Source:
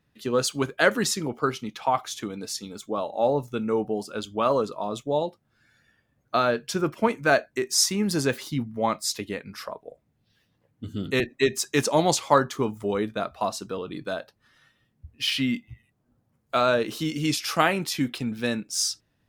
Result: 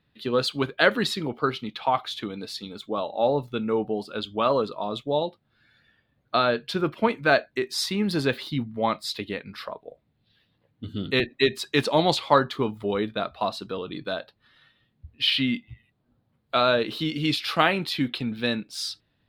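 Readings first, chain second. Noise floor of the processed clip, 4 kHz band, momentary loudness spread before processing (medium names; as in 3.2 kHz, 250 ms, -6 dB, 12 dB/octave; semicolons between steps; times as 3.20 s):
-71 dBFS, +2.5 dB, 12 LU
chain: resonant high shelf 5 kHz -8 dB, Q 3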